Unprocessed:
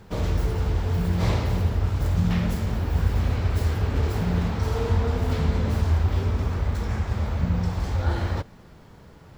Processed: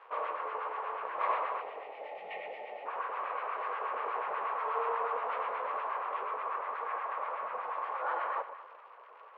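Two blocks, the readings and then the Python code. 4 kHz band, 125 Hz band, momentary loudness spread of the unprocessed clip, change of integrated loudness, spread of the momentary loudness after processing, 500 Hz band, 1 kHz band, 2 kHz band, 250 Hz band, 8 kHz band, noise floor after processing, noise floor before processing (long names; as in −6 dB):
−16.0 dB, below −40 dB, 4 LU, −10.5 dB, 11 LU, −6.5 dB, +4.0 dB, −3.0 dB, below −30 dB, can't be measured, −54 dBFS, −48 dBFS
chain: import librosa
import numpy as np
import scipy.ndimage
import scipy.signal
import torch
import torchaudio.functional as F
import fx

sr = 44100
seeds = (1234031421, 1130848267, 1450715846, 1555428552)

y = fx.filter_lfo_bandpass(x, sr, shape='sine', hz=8.3, low_hz=670.0, high_hz=1600.0, q=0.8)
y = fx.spec_box(y, sr, start_s=1.61, length_s=1.25, low_hz=900.0, high_hz=1800.0, gain_db=-24)
y = fx.peak_eq(y, sr, hz=1100.0, db=13.5, octaves=0.31)
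y = fx.dmg_crackle(y, sr, seeds[0], per_s=230.0, level_db=-42.0)
y = scipy.signal.sosfilt(scipy.signal.cheby1(3, 1.0, [490.0, 2700.0], 'bandpass', fs=sr, output='sos'), y)
y = fx.echo_alternate(y, sr, ms=112, hz=900.0, feedback_pct=55, wet_db=-9)
y = F.gain(torch.from_numpy(y), -1.0).numpy()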